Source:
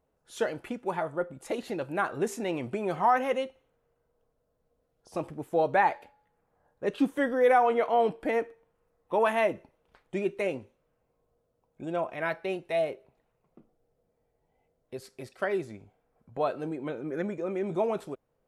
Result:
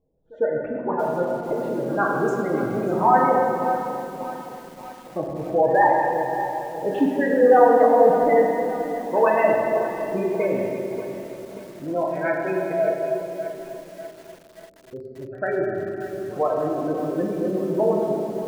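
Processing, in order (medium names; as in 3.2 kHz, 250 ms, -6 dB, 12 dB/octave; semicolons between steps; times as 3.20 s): spectral gate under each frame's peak -15 dB strong; level-controlled noise filter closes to 470 Hz, open at -22 dBFS; on a send: reverse echo 102 ms -23.5 dB; on the sum: simulated room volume 140 m³, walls hard, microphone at 0.53 m; bit-crushed delay 585 ms, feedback 55%, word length 7-bit, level -12.5 dB; trim +4 dB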